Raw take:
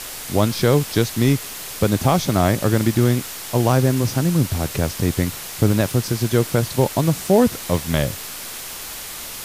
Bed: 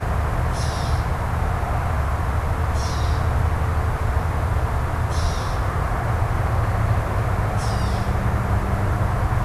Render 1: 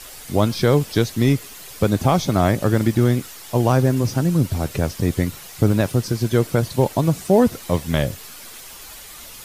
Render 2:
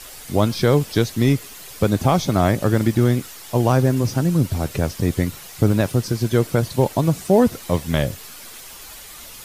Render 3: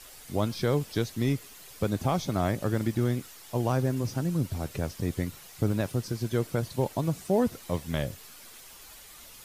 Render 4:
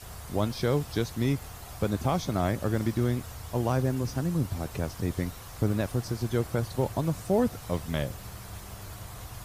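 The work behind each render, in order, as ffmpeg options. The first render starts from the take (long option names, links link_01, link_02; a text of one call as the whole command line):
ffmpeg -i in.wav -af "afftdn=noise_reduction=9:noise_floor=-33" out.wav
ffmpeg -i in.wav -af anull out.wav
ffmpeg -i in.wav -af "volume=-10dB" out.wav
ffmpeg -i in.wav -i bed.wav -filter_complex "[1:a]volume=-22dB[link_01];[0:a][link_01]amix=inputs=2:normalize=0" out.wav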